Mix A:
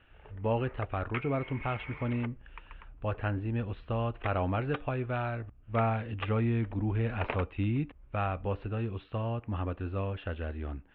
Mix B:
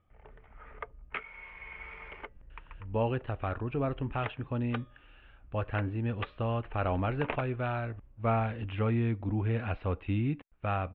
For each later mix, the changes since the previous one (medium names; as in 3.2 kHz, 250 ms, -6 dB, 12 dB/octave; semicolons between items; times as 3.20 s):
speech: entry +2.50 s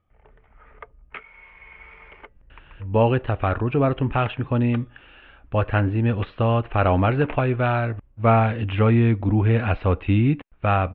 speech +11.5 dB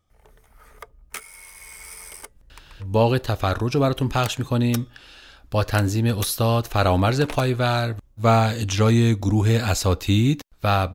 master: remove steep low-pass 2.9 kHz 48 dB/octave